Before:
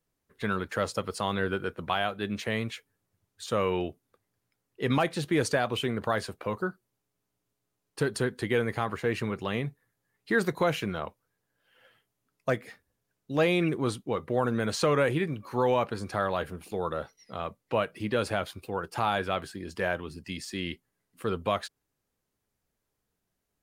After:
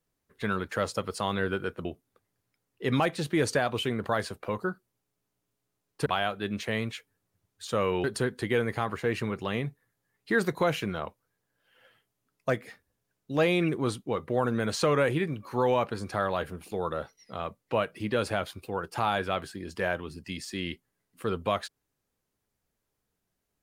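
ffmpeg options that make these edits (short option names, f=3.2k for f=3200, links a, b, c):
-filter_complex "[0:a]asplit=4[a][b][c][d];[a]atrim=end=1.852[e];[b]atrim=start=3.828:end=8.042[f];[c]atrim=start=1.848:end=3.832[g];[d]atrim=start=8.038[h];[e][f]acrossfade=d=0.004:c1=hsin:c2=hsin[i];[i][g]acrossfade=d=0.004:c1=hsin:c2=hsin[j];[j][h]acrossfade=d=0.004:c1=hsin:c2=hsin"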